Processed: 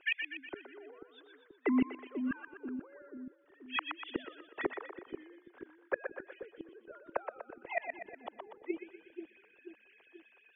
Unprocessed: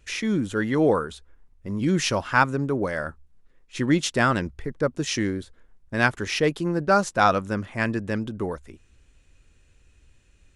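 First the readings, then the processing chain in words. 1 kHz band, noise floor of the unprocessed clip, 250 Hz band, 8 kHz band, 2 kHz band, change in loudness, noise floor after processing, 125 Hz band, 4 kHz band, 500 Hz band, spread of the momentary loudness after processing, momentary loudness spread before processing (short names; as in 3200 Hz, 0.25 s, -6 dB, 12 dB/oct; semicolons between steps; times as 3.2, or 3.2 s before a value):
-19.5 dB, -60 dBFS, -13.0 dB, under -40 dB, -14.0 dB, -15.5 dB, -66 dBFS, -32.5 dB, -15.0 dB, -16.5 dB, 19 LU, 12 LU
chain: sine-wave speech; resonant low shelf 310 Hz -8.5 dB, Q 1.5; compressor 10:1, threshold -24 dBFS, peak gain reduction 12 dB; flipped gate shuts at -29 dBFS, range -37 dB; air absorption 110 m; on a send: split-band echo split 410 Hz, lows 0.484 s, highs 0.122 s, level -6.5 dB; on the sum: gain +10.5 dB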